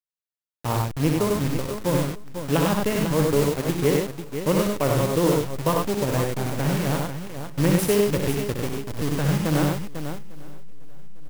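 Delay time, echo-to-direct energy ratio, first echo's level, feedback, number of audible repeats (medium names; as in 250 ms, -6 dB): 64 ms, -0.5 dB, -6.0 dB, no regular repeats, 9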